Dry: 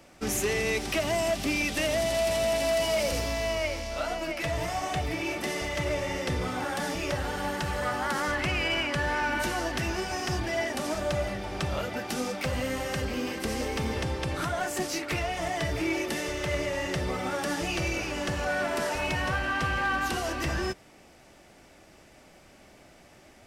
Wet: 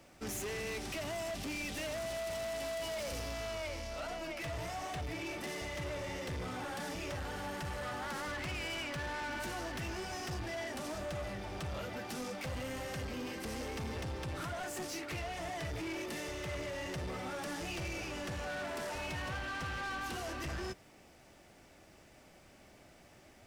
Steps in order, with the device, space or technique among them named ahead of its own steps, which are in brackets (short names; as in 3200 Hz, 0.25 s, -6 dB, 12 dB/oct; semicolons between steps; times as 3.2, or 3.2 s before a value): open-reel tape (soft clip -31.5 dBFS, distortion -10 dB; bell 100 Hz +3 dB 1.05 oct; white noise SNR 39 dB); gain -5.5 dB